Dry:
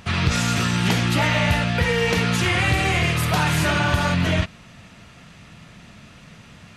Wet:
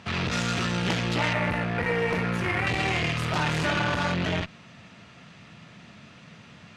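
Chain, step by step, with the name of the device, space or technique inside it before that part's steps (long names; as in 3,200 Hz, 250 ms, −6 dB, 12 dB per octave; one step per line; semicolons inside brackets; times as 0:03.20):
valve radio (band-pass filter 110–5,900 Hz; tube saturation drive 14 dB, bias 0.55; saturating transformer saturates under 560 Hz)
0:01.33–0:02.67: flat-topped bell 4,700 Hz −10 dB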